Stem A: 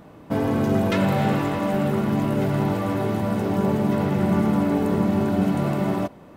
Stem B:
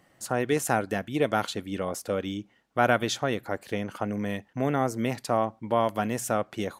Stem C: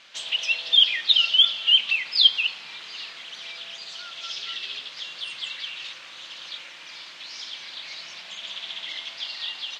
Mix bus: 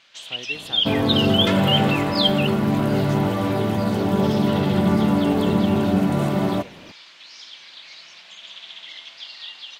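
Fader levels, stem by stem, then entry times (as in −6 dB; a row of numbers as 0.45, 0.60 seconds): +2.0, −14.0, −4.5 decibels; 0.55, 0.00, 0.00 seconds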